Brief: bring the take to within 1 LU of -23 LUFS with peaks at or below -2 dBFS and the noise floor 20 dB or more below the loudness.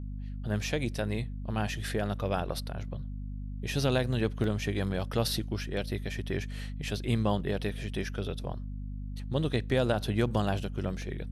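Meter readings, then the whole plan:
dropouts 3; longest dropout 1.3 ms; hum 50 Hz; highest harmonic 250 Hz; hum level -35 dBFS; loudness -32.5 LUFS; peak level -13.5 dBFS; loudness target -23.0 LUFS
-> interpolate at 1.87/4.44/11.02 s, 1.3 ms; hum notches 50/100/150/200/250 Hz; trim +9.5 dB

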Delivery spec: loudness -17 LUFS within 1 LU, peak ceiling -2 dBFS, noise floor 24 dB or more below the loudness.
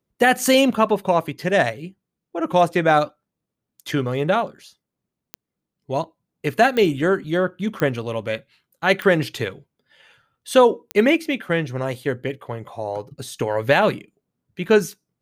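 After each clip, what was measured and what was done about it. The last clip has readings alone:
clicks found 5; loudness -20.5 LUFS; peak level -3.0 dBFS; loudness target -17.0 LUFS
-> de-click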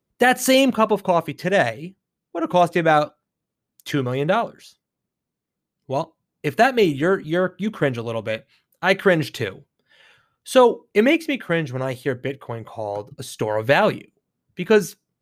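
clicks found 0; loudness -20.5 LUFS; peak level -3.0 dBFS; loudness target -17.0 LUFS
-> trim +3.5 dB; peak limiter -2 dBFS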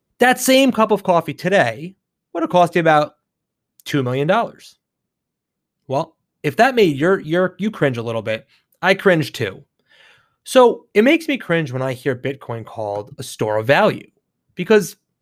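loudness -17.5 LUFS; peak level -2.0 dBFS; noise floor -80 dBFS

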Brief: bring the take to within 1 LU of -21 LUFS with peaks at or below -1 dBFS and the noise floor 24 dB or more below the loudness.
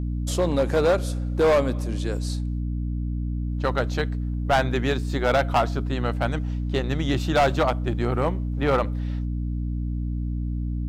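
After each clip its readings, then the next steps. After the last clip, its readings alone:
clipped samples 1.4%; clipping level -14.5 dBFS; hum 60 Hz; highest harmonic 300 Hz; hum level -25 dBFS; loudness -25.0 LUFS; peak level -14.5 dBFS; loudness target -21.0 LUFS
-> clip repair -14.5 dBFS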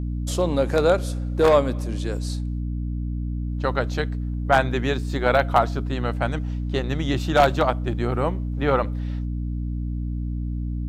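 clipped samples 0.0%; hum 60 Hz; highest harmonic 300 Hz; hum level -24 dBFS
-> hum notches 60/120/180/240/300 Hz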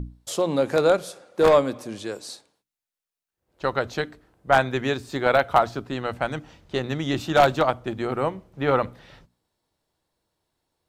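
hum not found; loudness -23.5 LUFS; peak level -4.5 dBFS; loudness target -21.0 LUFS
-> trim +2.5 dB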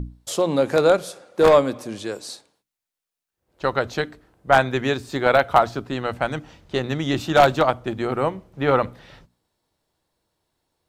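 loudness -21.0 LUFS; peak level -2.0 dBFS; noise floor -87 dBFS

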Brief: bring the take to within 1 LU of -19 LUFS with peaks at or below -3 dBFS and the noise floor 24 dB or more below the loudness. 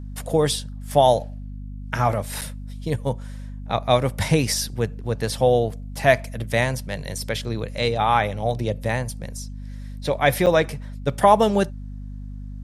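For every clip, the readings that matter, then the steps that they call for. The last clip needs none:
dropouts 2; longest dropout 7.2 ms; hum 50 Hz; highest harmonic 250 Hz; hum level -31 dBFS; loudness -22.5 LUFS; peak level -2.0 dBFS; loudness target -19.0 LUFS
-> interpolate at 2.41/10.46 s, 7.2 ms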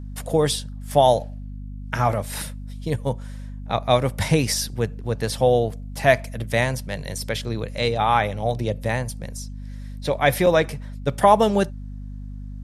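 dropouts 0; hum 50 Hz; highest harmonic 250 Hz; hum level -31 dBFS
-> de-hum 50 Hz, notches 5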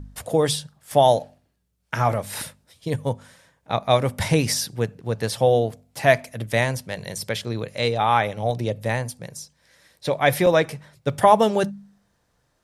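hum not found; loudness -22.5 LUFS; peak level -2.0 dBFS; loudness target -19.0 LUFS
-> trim +3.5 dB; peak limiter -3 dBFS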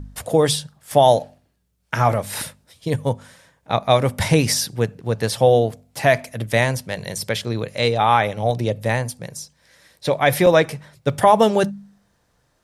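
loudness -19.5 LUFS; peak level -3.0 dBFS; noise floor -66 dBFS

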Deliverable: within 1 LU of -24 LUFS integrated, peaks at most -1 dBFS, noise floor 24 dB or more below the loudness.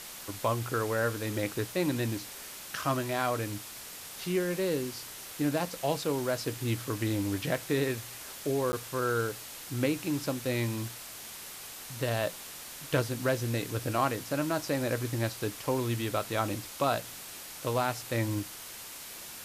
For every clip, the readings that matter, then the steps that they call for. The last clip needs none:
dropouts 1; longest dropout 10 ms; noise floor -45 dBFS; noise floor target -57 dBFS; loudness -32.5 LUFS; peak level -14.0 dBFS; loudness target -24.0 LUFS
-> interpolate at 8.72 s, 10 ms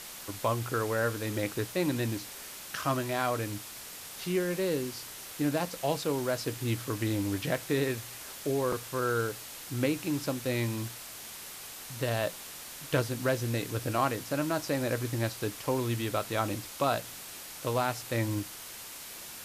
dropouts 0; noise floor -45 dBFS; noise floor target -57 dBFS
-> noise reduction 12 dB, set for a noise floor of -45 dBFS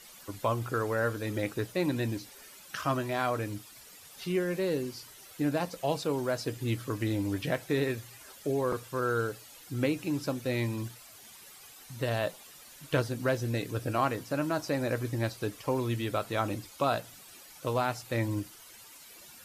noise floor -52 dBFS; noise floor target -56 dBFS
-> noise reduction 6 dB, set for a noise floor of -52 dBFS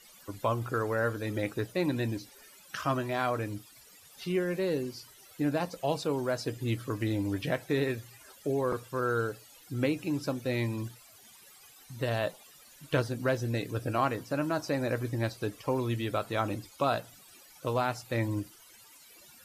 noise floor -56 dBFS; loudness -32.0 LUFS; peak level -14.0 dBFS; loudness target -24.0 LUFS
-> trim +8 dB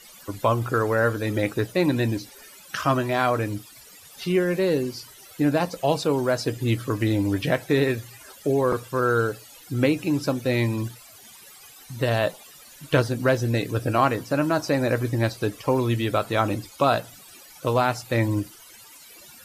loudness -24.0 LUFS; peak level -6.0 dBFS; noise floor -48 dBFS

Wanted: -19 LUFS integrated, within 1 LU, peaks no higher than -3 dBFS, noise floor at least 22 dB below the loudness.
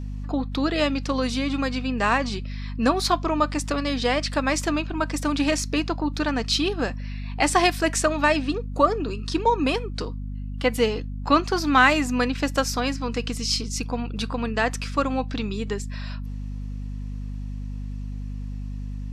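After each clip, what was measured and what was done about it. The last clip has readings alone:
hum 50 Hz; highest harmonic 250 Hz; hum level -29 dBFS; loudness -24.0 LUFS; peak level -4.0 dBFS; loudness target -19.0 LUFS
-> de-hum 50 Hz, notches 5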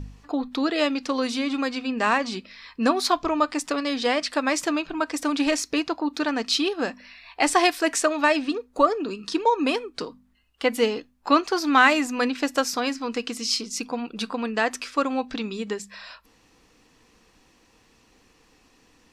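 hum not found; loudness -24.5 LUFS; peak level -3.5 dBFS; loudness target -19.0 LUFS
-> trim +5.5 dB; peak limiter -3 dBFS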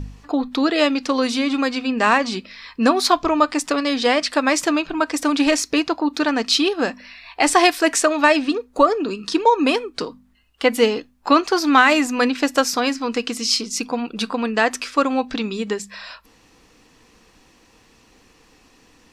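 loudness -19.0 LUFS; peak level -3.0 dBFS; noise floor -55 dBFS

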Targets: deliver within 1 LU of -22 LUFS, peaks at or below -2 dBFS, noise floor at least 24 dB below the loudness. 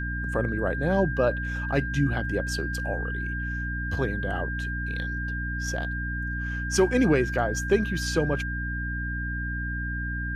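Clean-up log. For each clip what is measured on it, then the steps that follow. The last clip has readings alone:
hum 60 Hz; highest harmonic 300 Hz; hum level -29 dBFS; steady tone 1.6 kHz; tone level -32 dBFS; loudness -27.5 LUFS; peak level -10.0 dBFS; loudness target -22.0 LUFS
-> hum notches 60/120/180/240/300 Hz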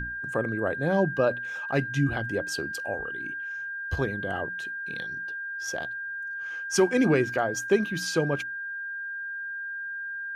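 hum not found; steady tone 1.6 kHz; tone level -32 dBFS
-> band-stop 1.6 kHz, Q 30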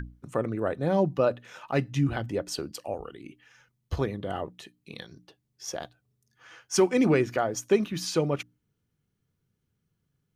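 steady tone not found; loudness -28.0 LUFS; peak level -11.0 dBFS; loudness target -22.0 LUFS
-> trim +6 dB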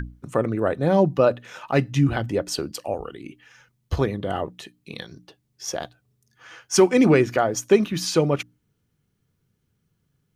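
loudness -22.0 LUFS; peak level -5.0 dBFS; noise floor -73 dBFS

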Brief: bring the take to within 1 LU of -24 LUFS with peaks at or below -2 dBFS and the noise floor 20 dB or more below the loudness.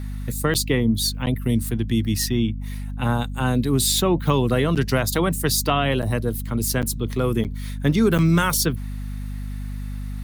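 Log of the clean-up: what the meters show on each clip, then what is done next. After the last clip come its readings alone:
dropouts 7; longest dropout 8.1 ms; hum 50 Hz; highest harmonic 250 Hz; hum level -27 dBFS; loudness -21.5 LUFS; peak level -6.5 dBFS; loudness target -24.0 LUFS
-> interpolate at 0.54/1.26/4.75/6.02/6.82/7.44/8.18 s, 8.1 ms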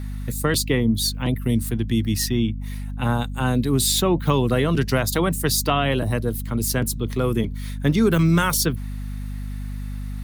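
dropouts 0; hum 50 Hz; highest harmonic 250 Hz; hum level -27 dBFS
-> hum notches 50/100/150/200/250 Hz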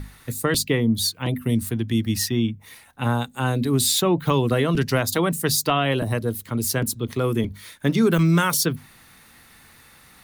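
hum not found; loudness -22.0 LUFS; peak level -7.0 dBFS; loudness target -24.0 LUFS
-> trim -2 dB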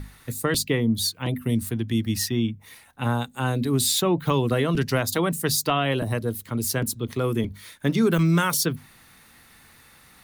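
loudness -24.0 LUFS; peak level -9.0 dBFS; noise floor -53 dBFS

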